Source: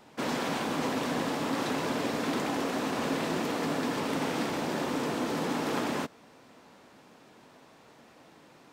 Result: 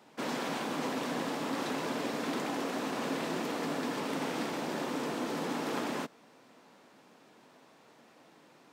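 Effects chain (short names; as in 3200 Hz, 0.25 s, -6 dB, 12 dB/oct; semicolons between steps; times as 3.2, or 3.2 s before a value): HPF 150 Hz 12 dB/oct; gain -3.5 dB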